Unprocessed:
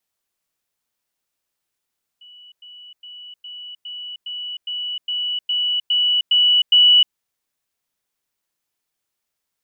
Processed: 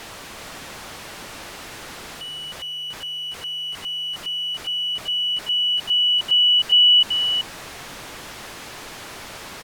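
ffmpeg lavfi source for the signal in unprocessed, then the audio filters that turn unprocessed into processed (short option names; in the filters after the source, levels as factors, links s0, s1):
-f lavfi -i "aevalsrc='pow(10,(-41.5+3*floor(t/0.41))/20)*sin(2*PI*2950*t)*clip(min(mod(t,0.41),0.31-mod(t,0.41))/0.005,0,1)':d=4.92:s=44100"
-af "aeval=exprs='val(0)+0.5*0.0631*sgn(val(0))':c=same,aemphasis=mode=reproduction:type=75fm,aecho=1:1:383:0.473"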